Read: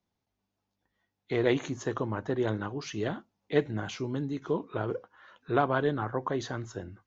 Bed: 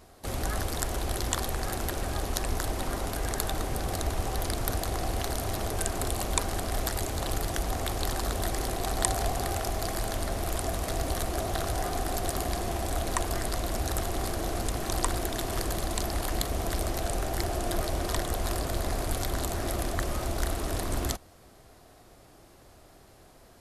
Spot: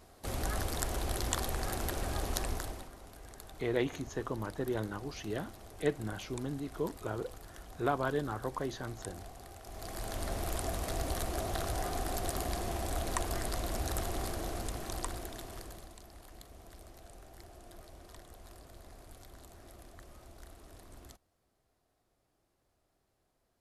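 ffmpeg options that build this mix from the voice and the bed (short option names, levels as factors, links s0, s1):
-filter_complex "[0:a]adelay=2300,volume=0.531[s0];[1:a]volume=3.55,afade=t=out:st=2.39:d=0.51:silence=0.158489,afade=t=in:st=9.63:d=0.69:silence=0.177828,afade=t=out:st=14.09:d=1.89:silence=0.125893[s1];[s0][s1]amix=inputs=2:normalize=0"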